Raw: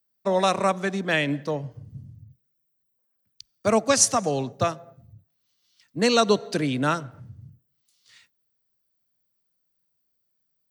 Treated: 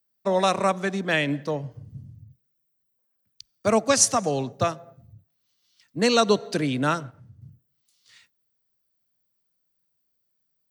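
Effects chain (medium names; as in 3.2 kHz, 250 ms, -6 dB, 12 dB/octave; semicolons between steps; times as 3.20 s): 6.14–7.42 s: gate -37 dBFS, range -6 dB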